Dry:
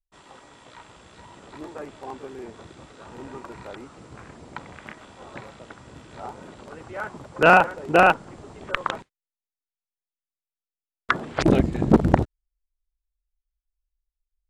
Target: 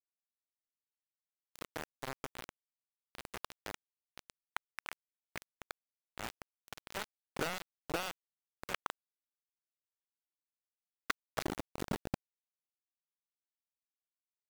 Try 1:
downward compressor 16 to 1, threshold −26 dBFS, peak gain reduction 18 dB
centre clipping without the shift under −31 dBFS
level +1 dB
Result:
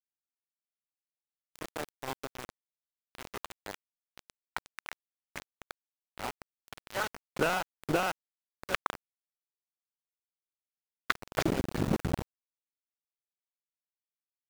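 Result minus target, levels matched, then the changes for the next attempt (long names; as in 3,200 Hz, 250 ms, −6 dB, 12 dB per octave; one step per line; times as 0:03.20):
downward compressor: peak gain reduction −7 dB
change: downward compressor 16 to 1, threshold −33.5 dBFS, peak gain reduction 25 dB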